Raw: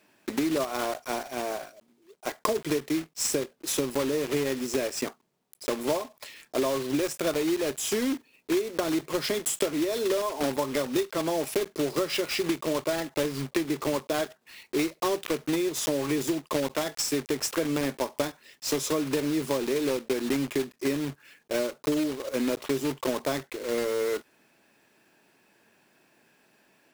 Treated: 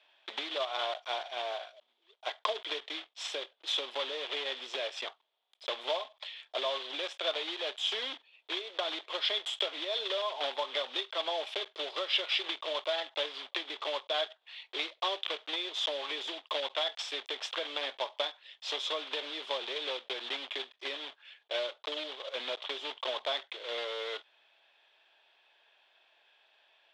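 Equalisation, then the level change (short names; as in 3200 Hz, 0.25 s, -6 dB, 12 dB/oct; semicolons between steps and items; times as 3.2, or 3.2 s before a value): ladder high-pass 540 Hz, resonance 35%; synth low-pass 3400 Hz, resonance Q 7.7; 0.0 dB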